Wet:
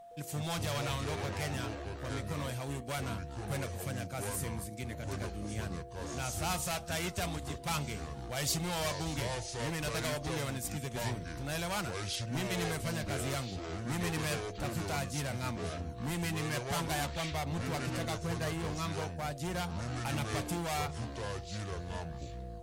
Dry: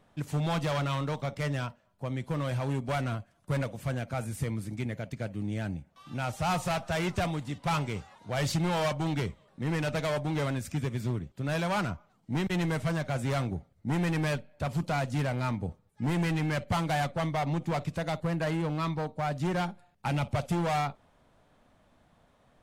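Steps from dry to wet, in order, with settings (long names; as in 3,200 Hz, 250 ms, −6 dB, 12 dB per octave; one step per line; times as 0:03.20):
steady tone 690 Hz −42 dBFS
delay with pitch and tempo change per echo 113 ms, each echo −6 semitones, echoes 2
first-order pre-emphasis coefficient 0.8
level +5.5 dB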